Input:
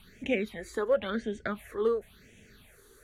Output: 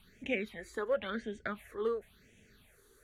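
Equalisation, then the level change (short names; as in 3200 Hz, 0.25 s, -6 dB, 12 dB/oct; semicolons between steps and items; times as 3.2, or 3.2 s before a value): dynamic EQ 2000 Hz, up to +5 dB, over -45 dBFS, Q 0.84; -6.5 dB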